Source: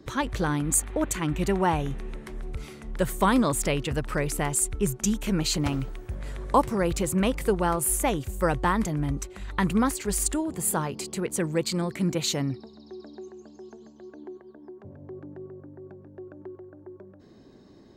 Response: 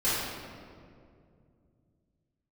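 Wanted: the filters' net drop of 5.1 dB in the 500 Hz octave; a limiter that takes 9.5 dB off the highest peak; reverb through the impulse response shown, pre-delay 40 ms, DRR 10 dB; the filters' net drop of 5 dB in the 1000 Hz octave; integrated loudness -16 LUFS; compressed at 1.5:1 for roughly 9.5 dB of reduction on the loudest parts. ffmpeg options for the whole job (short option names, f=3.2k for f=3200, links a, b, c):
-filter_complex "[0:a]equalizer=f=500:t=o:g=-5.5,equalizer=f=1k:t=o:g=-4.5,acompressor=threshold=-47dB:ratio=1.5,alimiter=level_in=4.5dB:limit=-24dB:level=0:latency=1,volume=-4.5dB,asplit=2[a][b];[1:a]atrim=start_sample=2205,adelay=40[c];[b][c]afir=irnorm=-1:irlink=0,volume=-22dB[d];[a][d]amix=inputs=2:normalize=0,volume=23dB"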